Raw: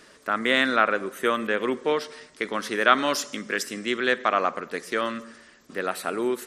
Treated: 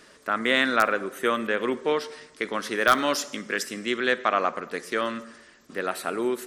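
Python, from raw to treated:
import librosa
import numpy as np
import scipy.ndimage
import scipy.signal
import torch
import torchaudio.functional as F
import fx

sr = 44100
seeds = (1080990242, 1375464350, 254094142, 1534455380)

p1 = (np.mod(10.0 ** (5.0 / 20.0) * x + 1.0, 2.0) - 1.0) / 10.0 ** (5.0 / 20.0)
p2 = x + F.gain(torch.from_numpy(p1), -8.0).numpy()
p3 = fx.rev_plate(p2, sr, seeds[0], rt60_s=1.0, hf_ratio=0.65, predelay_ms=0, drr_db=18.5)
y = F.gain(torch.from_numpy(p3), -3.5).numpy()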